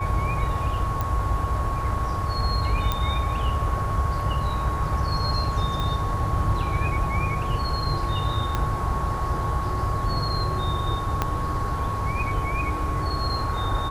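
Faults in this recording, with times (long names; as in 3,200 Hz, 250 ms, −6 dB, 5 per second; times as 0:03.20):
whistle 1,100 Hz −29 dBFS
0:01.01: click −13 dBFS
0:02.92: click −10 dBFS
0:05.80: click −16 dBFS
0:08.55: click −11 dBFS
0:11.22: click −9 dBFS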